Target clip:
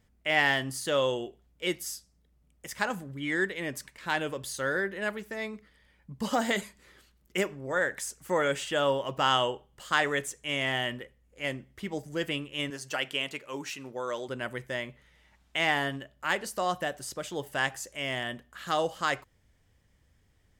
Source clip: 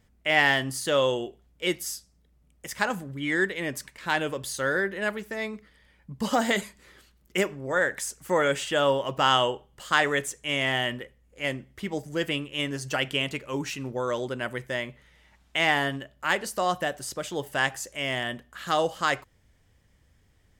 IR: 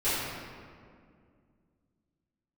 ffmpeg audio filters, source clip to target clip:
-filter_complex "[0:a]asettb=1/sr,asplit=3[link_01][link_02][link_03];[link_01]atrim=end=12.704[link_04];[link_02]atrim=start=12.7:end=14.29,asetpts=PTS-STARTPTS,afade=type=in:duration=0.004:curve=qsin,afade=type=out:start_time=1.586:duration=0.004:curve=qsin,highpass=frequency=400:poles=1[link_05];[link_03]atrim=start=14.286[link_06];[link_04][link_05]acrossfade=duration=0.004:curve1=hsin:curve2=qsin[link_07];[link_07][link_06]acrossfade=duration=0.004:curve1=qsin:curve2=hsin,volume=-3.5dB"

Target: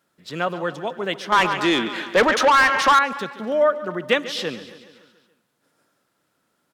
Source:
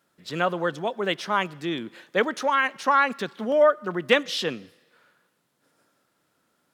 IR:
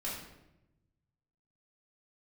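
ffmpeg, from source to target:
-filter_complex "[0:a]asplit=2[link_01][link_02];[link_02]aecho=0:1:141|282|423|564|705|846:0.168|0.099|0.0584|0.0345|0.0203|0.012[link_03];[link_01][link_03]amix=inputs=2:normalize=0,asettb=1/sr,asplit=3[link_04][link_05][link_06];[link_04]atrim=end=1.324[link_07];[link_05]atrim=start=1.32:end=2.99,asetpts=PTS-STARTPTS,afade=type=in:duration=0.004:curve=qsin,afade=type=out:start_time=1.666:duration=0.004:curve=qsin,asplit=2[link_08][link_09];[link_09]highpass=frequency=720:poles=1,volume=24dB,asoftclip=type=tanh:threshold=-7dB[link_10];[link_08][link_10]amix=inputs=2:normalize=0,lowpass=frequency=3300:poles=1,volume=-6dB[link_11];[link_06]atrim=start=2.986[link_12];[link_07][link_11]acrossfade=duration=0.004:curve1=hsin:curve2=qsin[link_13];[link_13][link_12]acrossfade=duration=0.004:curve1=qsin:curve2=hsin,asplit=2[link_14][link_15];[link_15]aecho=0:1:248:0.0794[link_16];[link_14][link_16]amix=inputs=2:normalize=0"

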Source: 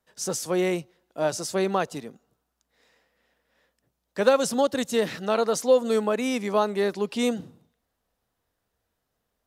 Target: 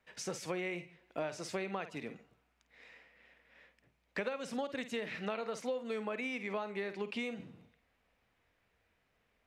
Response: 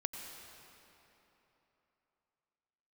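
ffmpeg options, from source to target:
-filter_complex "[0:a]equalizer=frequency=2300:width=1.8:gain=13.5,asplit=2[link_01][link_02];[1:a]atrim=start_sample=2205,atrim=end_sample=4410,adelay=51[link_03];[link_02][link_03]afir=irnorm=-1:irlink=0,volume=-11.5dB[link_04];[link_01][link_04]amix=inputs=2:normalize=0,acompressor=threshold=-36dB:ratio=8,aemphasis=mode=reproduction:type=50kf,volume=1dB"

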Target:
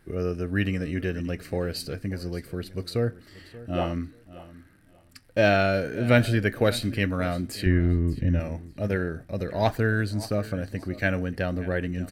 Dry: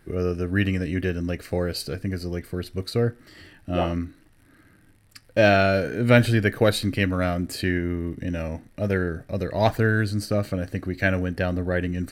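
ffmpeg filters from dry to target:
ffmpeg -i in.wav -filter_complex "[0:a]asettb=1/sr,asplit=3[link_01][link_02][link_03];[link_01]atrim=end=7.664[link_04];[link_02]atrim=start=7.66:end=8.4,asetpts=PTS-STARTPTS,afade=type=in:duration=0.004:curve=qsin,afade=type=out:start_time=0.736:duration=0.004:curve=qsin,aemphasis=mode=reproduction:type=bsi[link_05];[link_03]atrim=start=8.396[link_06];[link_04][link_05]acrossfade=duration=0.004:curve1=hsin:curve2=qsin[link_07];[link_07][link_06]acrossfade=duration=0.004:curve1=qsin:curve2=hsin,aecho=1:1:582|1164:0.126|0.0252,volume=-3dB" out.wav

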